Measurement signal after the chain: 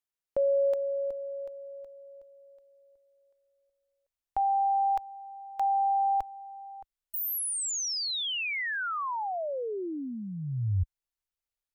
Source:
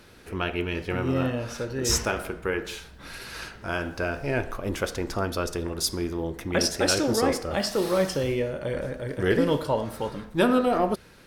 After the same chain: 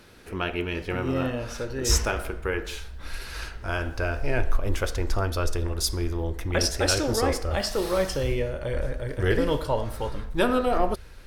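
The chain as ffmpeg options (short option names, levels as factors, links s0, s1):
-af "asubboost=boost=10.5:cutoff=56"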